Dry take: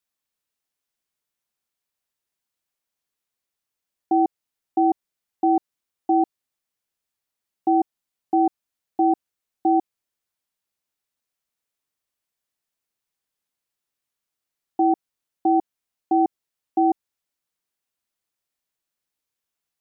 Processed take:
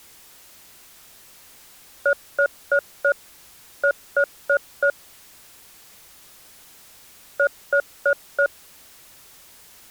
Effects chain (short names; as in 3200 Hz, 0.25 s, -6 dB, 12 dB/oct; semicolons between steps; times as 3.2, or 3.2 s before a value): zero-crossing step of -38.5 dBFS; speed mistake 7.5 ips tape played at 15 ips; frequency shift -93 Hz